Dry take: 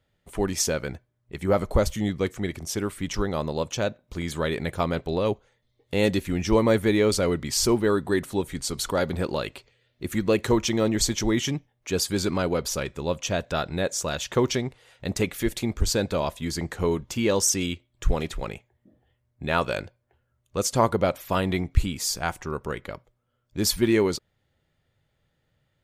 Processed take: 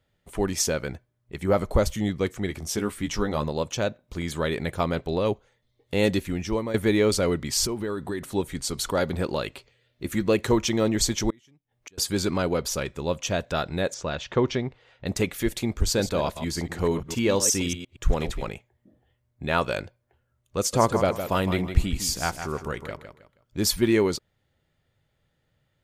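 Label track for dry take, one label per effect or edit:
2.470000	3.490000	doubling 14 ms -6 dB
6.170000	6.740000	fade out, to -13 dB
7.650000	8.240000	compression 5:1, threshold -26 dBFS
9.510000	10.230000	doubling 15 ms -13 dB
11.300000	11.980000	inverted gate shuts at -27 dBFS, range -32 dB
13.940000	15.060000	distance through air 160 m
15.860000	18.490000	chunks repeated in reverse 117 ms, level -10 dB
20.570000	23.680000	feedback delay 159 ms, feedback 30%, level -9 dB

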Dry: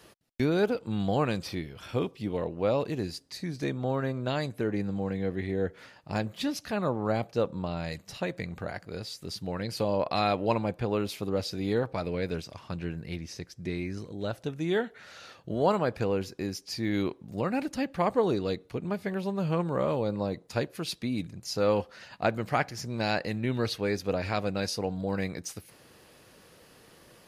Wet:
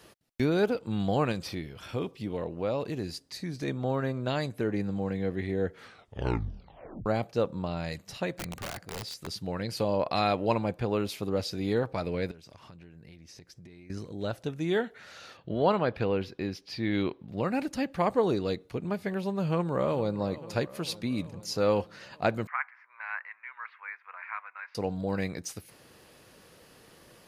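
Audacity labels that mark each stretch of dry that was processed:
1.320000	3.680000	compression 1.5:1, threshold -32 dBFS
5.730000	5.730000	tape stop 1.33 s
8.350000	9.270000	integer overflow gain 30.5 dB
12.310000	13.900000	compression 16:1, threshold -46 dBFS
15.370000	17.410000	resonant high shelf 5.1 kHz -11.5 dB, Q 1.5
19.470000	20.170000	echo throw 450 ms, feedback 70%, level -16.5 dB
22.470000	24.750000	elliptic band-pass 1–2.2 kHz, stop band 80 dB

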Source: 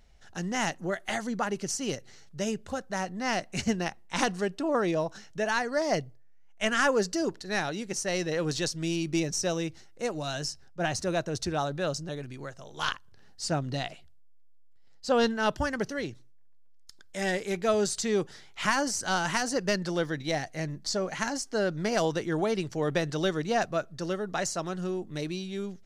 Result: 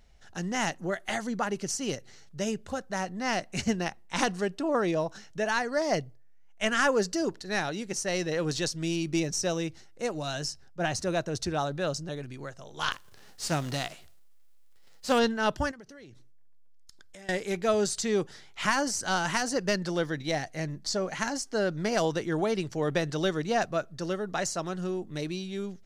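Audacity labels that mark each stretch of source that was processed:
12.910000	15.180000	formants flattened exponent 0.6
15.710000	17.290000	compression 10:1, threshold -45 dBFS

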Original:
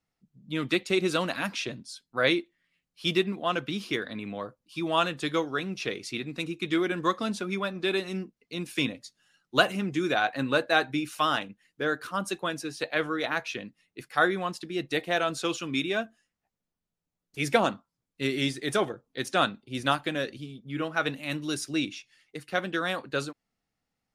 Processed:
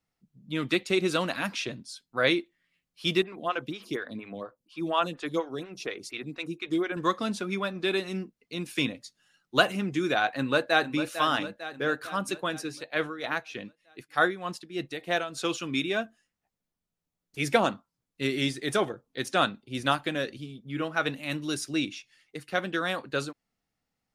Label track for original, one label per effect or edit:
3.220000	6.970000	lamp-driven phase shifter 4.2 Hz
10.270000	11.010000	echo throw 450 ms, feedback 60%, level -10.5 dB
12.710000	15.380000	tremolo 3.3 Hz, depth 69%

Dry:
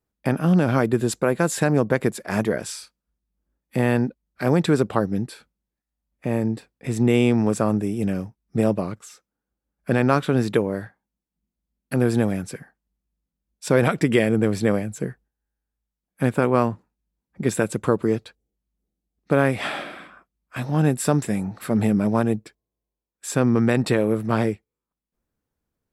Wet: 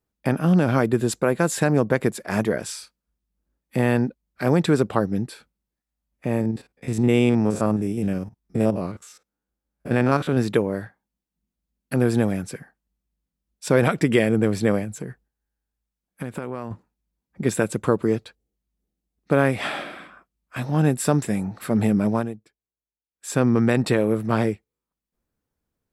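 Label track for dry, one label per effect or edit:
6.410000	10.370000	spectrogram pixelated in time every 50 ms
14.840000	16.710000	compression, threshold -26 dBFS
22.100000	23.350000	dip -14.5 dB, fades 0.24 s

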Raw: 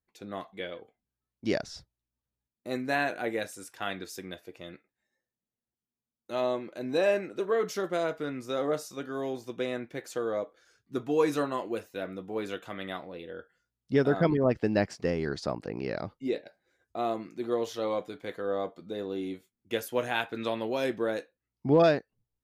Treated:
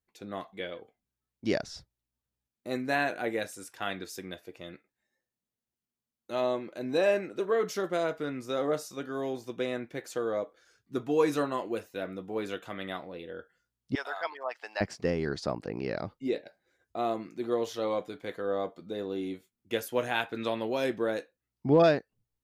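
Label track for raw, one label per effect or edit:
13.950000	14.810000	Chebyshev high-pass 810 Hz, order 3

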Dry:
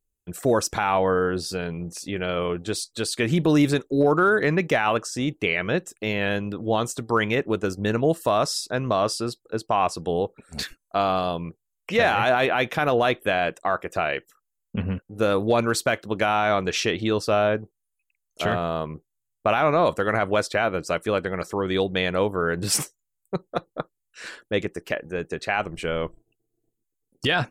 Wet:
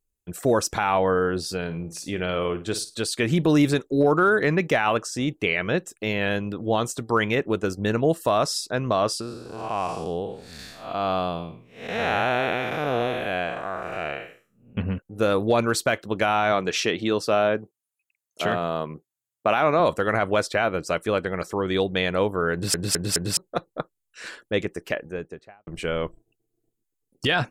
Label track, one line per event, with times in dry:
1.610000	2.950000	flutter echo walls apart 9.3 m, dies away in 0.26 s
9.210000	14.770000	spectral blur width 248 ms
16.520000	19.800000	high-pass 140 Hz
22.530000	22.530000	stutter in place 0.21 s, 4 plays
24.900000	25.670000	studio fade out

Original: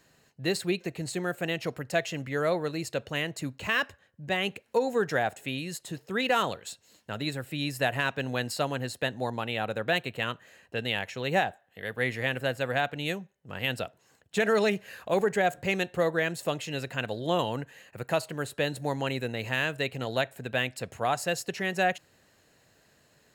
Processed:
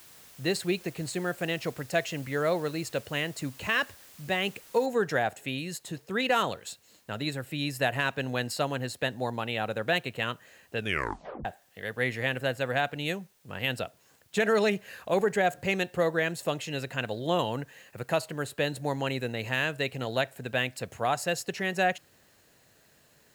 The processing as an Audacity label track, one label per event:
4.860000	4.860000	noise floor step -53 dB -67 dB
10.780000	10.780000	tape stop 0.67 s

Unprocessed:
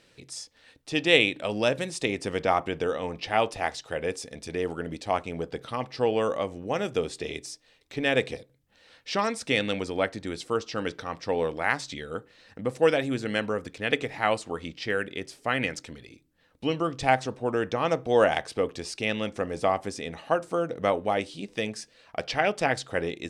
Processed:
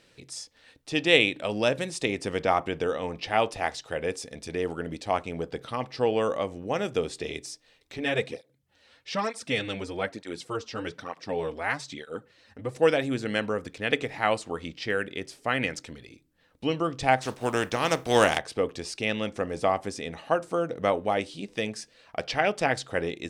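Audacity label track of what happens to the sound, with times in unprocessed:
7.970000	12.760000	cancelling through-zero flanger nulls at 1.1 Hz, depth 6.8 ms
17.210000	18.370000	spectral contrast reduction exponent 0.63

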